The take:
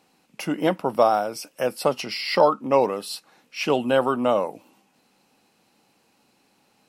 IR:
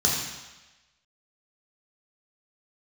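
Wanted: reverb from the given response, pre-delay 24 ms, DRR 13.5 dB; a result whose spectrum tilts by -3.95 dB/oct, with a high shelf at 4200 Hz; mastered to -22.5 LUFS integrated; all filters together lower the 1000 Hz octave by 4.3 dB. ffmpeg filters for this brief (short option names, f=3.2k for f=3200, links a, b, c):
-filter_complex "[0:a]equalizer=f=1k:t=o:g=-5.5,highshelf=f=4.2k:g=-5.5,asplit=2[a][b];[1:a]atrim=start_sample=2205,adelay=24[c];[b][c]afir=irnorm=-1:irlink=0,volume=-26.5dB[d];[a][d]amix=inputs=2:normalize=0,volume=2dB"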